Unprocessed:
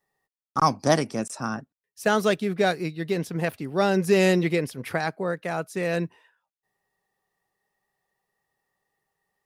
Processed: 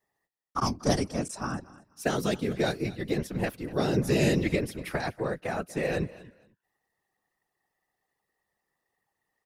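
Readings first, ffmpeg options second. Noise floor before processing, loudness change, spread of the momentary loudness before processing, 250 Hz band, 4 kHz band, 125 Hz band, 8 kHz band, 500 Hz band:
under -85 dBFS, -4.5 dB, 10 LU, -3.0 dB, -3.5 dB, -1.0 dB, -2.5 dB, -5.5 dB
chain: -filter_complex "[0:a]aeval=exprs='0.501*(cos(1*acos(clip(val(0)/0.501,-1,1)))-cos(1*PI/2))+0.0355*(cos(3*acos(clip(val(0)/0.501,-1,1)))-cos(3*PI/2))':c=same,acrossover=split=410|3000[s0][s1][s2];[s1]acompressor=threshold=0.0355:ratio=6[s3];[s0][s3][s2]amix=inputs=3:normalize=0,aecho=1:1:240|480:0.112|0.0236,afftfilt=real='hypot(re,im)*cos(2*PI*random(0))':imag='hypot(re,im)*sin(2*PI*random(1))':win_size=512:overlap=0.75,volume=1.88"

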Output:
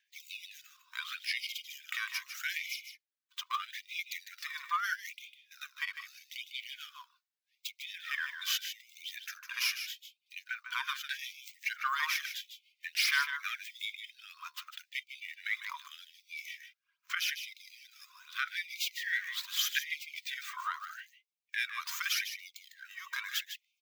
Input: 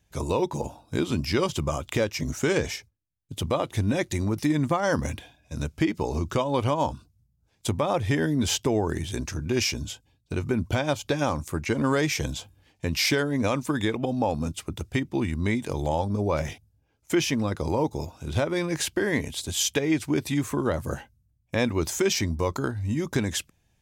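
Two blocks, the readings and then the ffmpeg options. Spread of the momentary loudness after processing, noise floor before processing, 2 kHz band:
16 LU, -69 dBFS, -2.0 dB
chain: -filter_complex "[0:a]acrossover=split=140|5600[s0][s1][s2];[s2]aeval=exprs='abs(val(0))':c=same[s3];[s0][s1][s3]amix=inputs=3:normalize=0,aphaser=in_gain=1:out_gain=1:delay=2.7:decay=0.46:speed=0.76:type=sinusoidal,aecho=1:1:152:0.355,afftfilt=real='re*gte(b*sr/1024,940*pow(2100/940,0.5+0.5*sin(2*PI*0.81*pts/sr)))':imag='im*gte(b*sr/1024,940*pow(2100/940,0.5+0.5*sin(2*PI*0.81*pts/sr)))':win_size=1024:overlap=0.75,volume=0.708"

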